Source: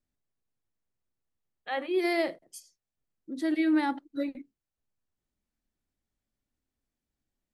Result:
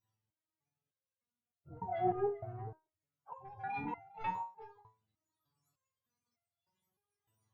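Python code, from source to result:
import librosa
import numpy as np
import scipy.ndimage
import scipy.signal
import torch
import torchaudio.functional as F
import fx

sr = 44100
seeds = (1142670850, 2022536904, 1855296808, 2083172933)

p1 = fx.octave_mirror(x, sr, pivot_hz=500.0)
p2 = fx.dynamic_eq(p1, sr, hz=1100.0, q=2.5, threshold_db=-45.0, ratio=4.0, max_db=5)
p3 = fx.rider(p2, sr, range_db=10, speed_s=0.5)
p4 = 10.0 ** (-23.0 / 20.0) * np.tanh(p3 / 10.0 ** (-23.0 / 20.0))
p5 = p4 + fx.echo_single(p4, sr, ms=408, db=-14.5, dry=0)
p6 = fx.resonator_held(p5, sr, hz=3.3, low_hz=110.0, high_hz=690.0)
y = p6 * librosa.db_to_amplitude(13.5)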